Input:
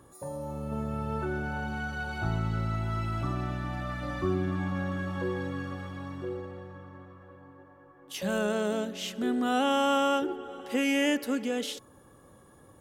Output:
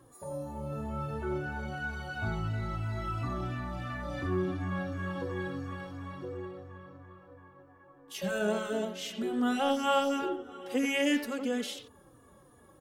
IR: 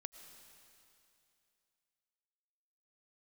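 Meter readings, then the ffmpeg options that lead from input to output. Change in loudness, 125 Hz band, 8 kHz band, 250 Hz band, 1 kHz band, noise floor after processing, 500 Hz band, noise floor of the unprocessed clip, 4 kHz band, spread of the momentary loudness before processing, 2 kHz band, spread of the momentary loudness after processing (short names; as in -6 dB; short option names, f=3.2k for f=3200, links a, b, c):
-2.5 dB, -3.5 dB, -2.5 dB, -2.5 dB, -3.0 dB, -59 dBFS, -2.0 dB, -56 dBFS, -2.5 dB, 14 LU, -2.0 dB, 13 LU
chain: -filter_complex "[0:a]asplit=2[a][b];[b]adelay=90,highpass=300,lowpass=3.4k,asoftclip=type=hard:threshold=-24.5dB,volume=-6dB[c];[a][c]amix=inputs=2:normalize=0,asplit=2[d][e];[e]adelay=3.3,afreqshift=-2.9[f];[d][f]amix=inputs=2:normalize=1"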